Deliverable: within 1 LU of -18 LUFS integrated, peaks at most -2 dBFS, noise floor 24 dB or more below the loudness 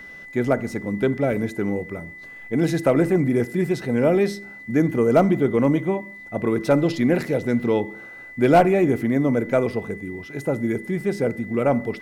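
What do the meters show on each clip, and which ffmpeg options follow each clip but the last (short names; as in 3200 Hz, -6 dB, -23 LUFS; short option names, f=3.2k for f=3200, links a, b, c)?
steady tone 2000 Hz; tone level -38 dBFS; loudness -21.5 LUFS; peak -6.0 dBFS; loudness target -18.0 LUFS
-> -af "bandreject=f=2k:w=30"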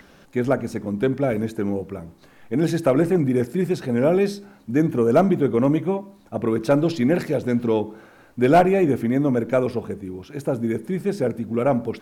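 steady tone none; loudness -21.5 LUFS; peak -6.0 dBFS; loudness target -18.0 LUFS
-> -af "volume=3.5dB"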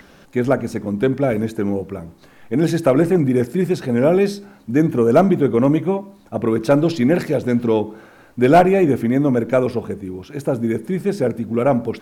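loudness -18.0 LUFS; peak -2.5 dBFS; noise floor -48 dBFS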